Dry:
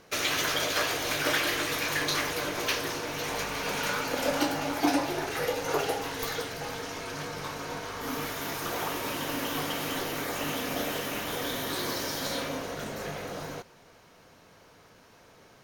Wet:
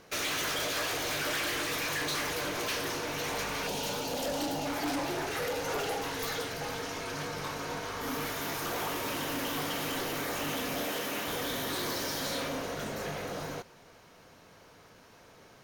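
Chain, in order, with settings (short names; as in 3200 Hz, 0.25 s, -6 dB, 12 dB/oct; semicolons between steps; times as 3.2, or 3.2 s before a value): 3.67–4.66 band shelf 1600 Hz -11 dB 1.3 oct; 10.85–11.27 HPF 170 Hz; hard clip -30 dBFS, distortion -8 dB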